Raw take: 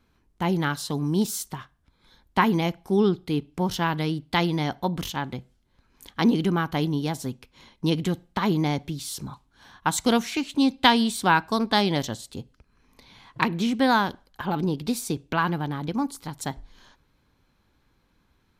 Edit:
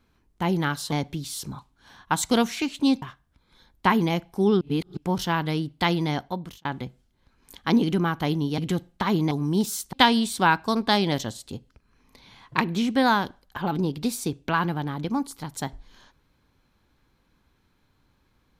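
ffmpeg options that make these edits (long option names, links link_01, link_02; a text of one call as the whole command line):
ffmpeg -i in.wav -filter_complex "[0:a]asplit=9[link_01][link_02][link_03][link_04][link_05][link_06][link_07][link_08][link_09];[link_01]atrim=end=0.922[link_10];[link_02]atrim=start=8.668:end=10.772[link_11];[link_03]atrim=start=1.538:end=3.132[link_12];[link_04]atrim=start=3.128:end=3.492,asetpts=PTS-STARTPTS,areverse[link_13];[link_05]atrim=start=3.488:end=5.17,asetpts=PTS-STARTPTS,afade=type=out:start_time=1.172:duration=0.51[link_14];[link_06]atrim=start=5.17:end=7.102,asetpts=PTS-STARTPTS,afade=type=in:duration=0.004:curve=hsin[link_15];[link_07]atrim=start=7.938:end=8.672[link_16];[link_08]atrim=start=0.918:end=1.542[link_17];[link_09]atrim=start=10.768[link_18];[link_10][link_11]acrossfade=duration=0.004:curve1=hsin:curve2=hsin[link_19];[link_19][link_12]acrossfade=duration=0.004:curve1=hsin:curve2=hsin[link_20];[link_20][link_13]acrossfade=duration=0.004:curve1=hsin:curve2=hsin[link_21];[link_14][link_15]concat=n=2:v=0:a=1[link_22];[link_21][link_22]acrossfade=duration=0.004:curve1=hsin:curve2=hsin[link_23];[link_23][link_16]acrossfade=duration=0.004:curve1=hsin:curve2=hsin[link_24];[link_24][link_17]acrossfade=duration=0.004:curve1=hsin:curve2=hsin[link_25];[link_25][link_18]acrossfade=duration=0.004:curve1=hsin:curve2=hsin" out.wav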